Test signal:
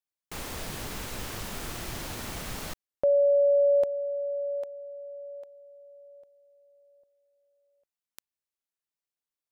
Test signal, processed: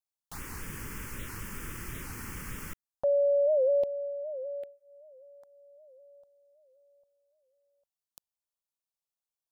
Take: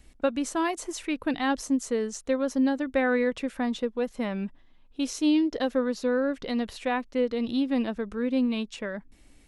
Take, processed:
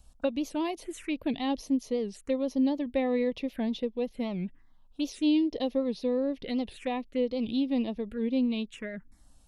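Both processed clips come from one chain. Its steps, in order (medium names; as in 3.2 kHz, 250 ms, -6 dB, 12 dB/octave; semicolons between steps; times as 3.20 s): touch-sensitive phaser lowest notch 320 Hz, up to 1.5 kHz, full sweep at -26.5 dBFS; warped record 78 rpm, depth 160 cents; trim -1.5 dB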